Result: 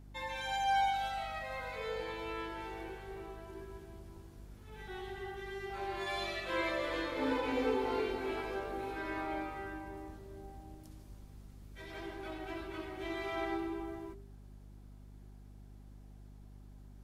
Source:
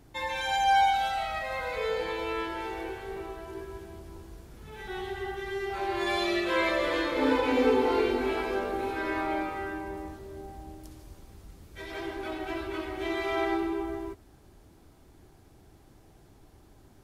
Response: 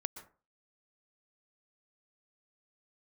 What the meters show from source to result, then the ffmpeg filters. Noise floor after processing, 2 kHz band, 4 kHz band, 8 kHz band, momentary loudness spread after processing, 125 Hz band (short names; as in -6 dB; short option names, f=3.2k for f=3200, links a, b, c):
-54 dBFS, -8.0 dB, -8.0 dB, -8.0 dB, 23 LU, -3.5 dB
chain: -af "bandreject=f=49.66:t=h:w=4,bandreject=f=99.32:t=h:w=4,bandreject=f=148.98:t=h:w=4,bandreject=f=198.64:t=h:w=4,bandreject=f=248.3:t=h:w=4,bandreject=f=297.96:t=h:w=4,bandreject=f=347.62:t=h:w=4,bandreject=f=397.28:t=h:w=4,bandreject=f=446.94:t=h:w=4,bandreject=f=496.6:t=h:w=4,aeval=exprs='val(0)+0.00631*(sin(2*PI*50*n/s)+sin(2*PI*2*50*n/s)/2+sin(2*PI*3*50*n/s)/3+sin(2*PI*4*50*n/s)/4+sin(2*PI*5*50*n/s)/5)':c=same,volume=-8dB"